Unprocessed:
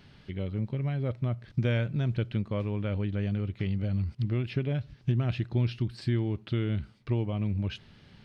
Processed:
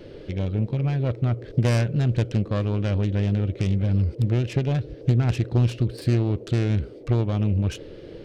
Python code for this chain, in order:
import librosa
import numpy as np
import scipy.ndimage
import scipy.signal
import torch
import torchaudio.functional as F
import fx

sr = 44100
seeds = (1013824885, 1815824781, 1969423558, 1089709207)

y = fx.self_delay(x, sr, depth_ms=0.38)
y = fx.low_shelf(y, sr, hz=62.0, db=11.5)
y = fx.dmg_noise_band(y, sr, seeds[0], low_hz=280.0, high_hz=540.0, level_db=-47.0)
y = y * 10.0 ** (5.0 / 20.0)